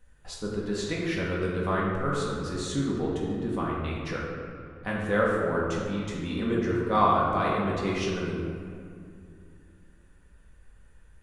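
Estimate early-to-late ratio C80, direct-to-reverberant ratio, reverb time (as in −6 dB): 1.5 dB, −5.0 dB, 2.5 s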